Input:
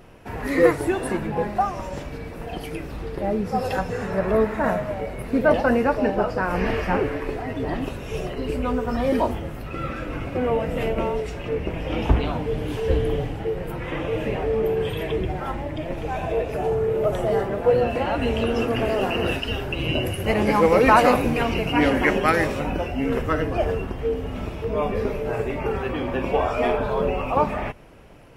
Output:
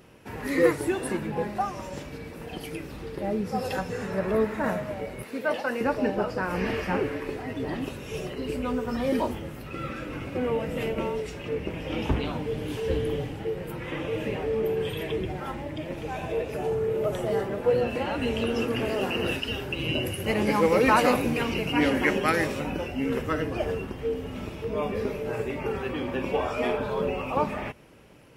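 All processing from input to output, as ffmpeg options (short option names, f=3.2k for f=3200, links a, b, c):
-filter_complex "[0:a]asettb=1/sr,asplit=3[a][b][c];[a]atrim=end=5.234[d];[b]atrim=start=5.23:end=5.81,asetpts=PTS-STARTPTS,afade=t=in:d=0.004:c=qsin,afade=t=out:st=0.576:d=0.004:c=qsin,highpass=f=760:p=1,acompressor=mode=upward:threshold=-34dB:ratio=2.5:attack=3.2:release=140:knee=2.83:detection=peak[e];[c]atrim=start=5.806[f];[d][e]acrossfade=d=0.004:c1=hsin:c2=qsin[g];[g][f]acrossfade=d=0.004:c1=qsin:c2=hsin,highpass=f=170:p=1,equalizer=f=920:t=o:w=2.7:g=-5.5,bandreject=f=690:w=12"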